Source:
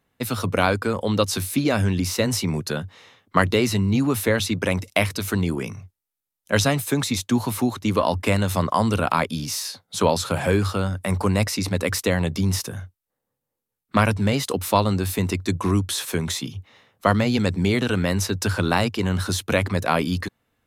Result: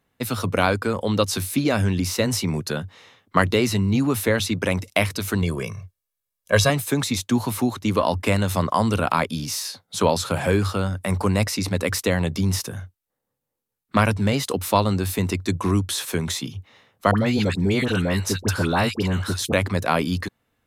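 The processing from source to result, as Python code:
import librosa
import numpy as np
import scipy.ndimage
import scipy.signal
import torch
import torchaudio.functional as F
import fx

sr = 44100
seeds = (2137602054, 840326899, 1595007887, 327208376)

y = fx.comb(x, sr, ms=1.8, depth=0.65, at=(5.42, 6.7))
y = fx.dispersion(y, sr, late='highs', ms=65.0, hz=1200.0, at=(17.11, 19.53))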